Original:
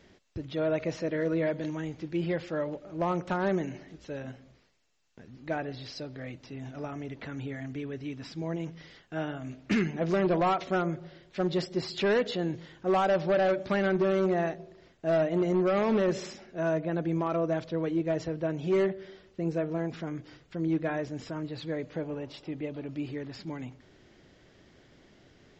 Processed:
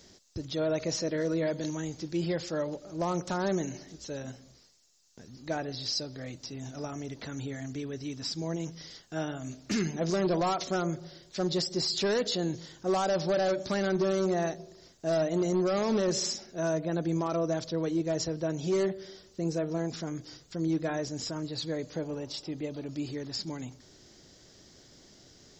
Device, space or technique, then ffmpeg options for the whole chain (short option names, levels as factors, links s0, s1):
over-bright horn tweeter: -af "highshelf=f=3700:t=q:w=1.5:g=12.5,alimiter=limit=0.0841:level=0:latency=1:release=20"